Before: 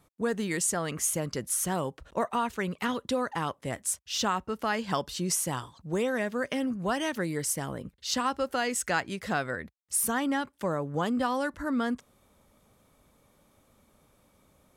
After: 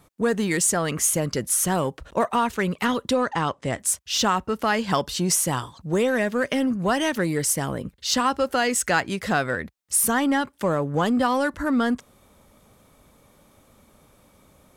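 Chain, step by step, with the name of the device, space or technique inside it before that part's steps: parallel distortion (in parallel at -10 dB: hard clip -30 dBFS, distortion -8 dB); 3.13–3.8 on the sum: LPF 8200 Hz 24 dB/oct; gain +5.5 dB

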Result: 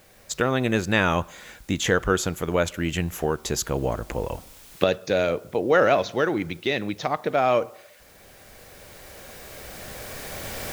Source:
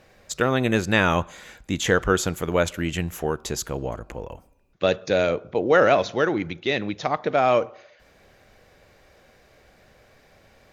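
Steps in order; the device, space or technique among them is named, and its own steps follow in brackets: cheap recorder with automatic gain (white noise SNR 33 dB; recorder AGC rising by 7.1 dB/s); gain -1.5 dB

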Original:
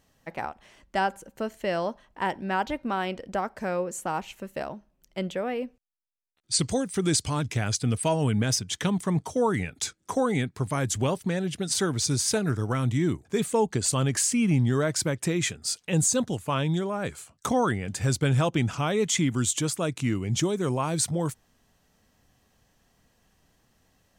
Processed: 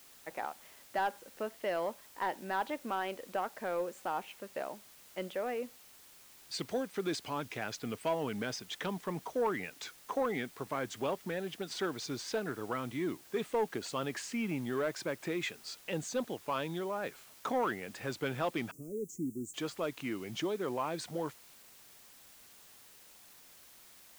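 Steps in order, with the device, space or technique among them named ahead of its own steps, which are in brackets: tape answering machine (BPF 320–3200 Hz; soft clip -19 dBFS, distortion -18 dB; wow and flutter; white noise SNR 20 dB); 18.71–19.54 elliptic band-stop 380–7200 Hz, stop band 40 dB; gain -4.5 dB

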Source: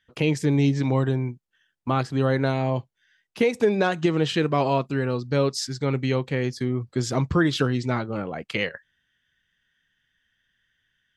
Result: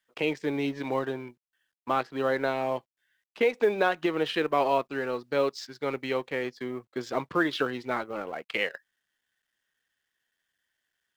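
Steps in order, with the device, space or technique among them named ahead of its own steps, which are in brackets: phone line with mismatched companding (BPF 400–3400 Hz; G.711 law mismatch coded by A)

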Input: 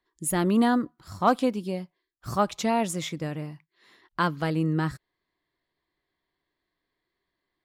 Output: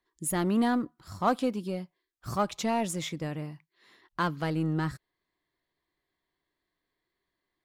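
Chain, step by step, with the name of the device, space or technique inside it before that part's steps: parallel distortion (in parallel at -6 dB: hard clip -27.5 dBFS, distortion -5 dB); on the sum: gain -5.5 dB

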